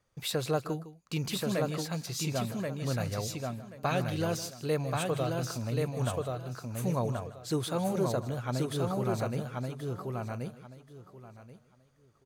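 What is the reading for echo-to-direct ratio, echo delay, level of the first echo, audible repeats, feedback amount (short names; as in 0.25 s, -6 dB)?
-2.5 dB, 0.157 s, -15.0 dB, 6, no steady repeat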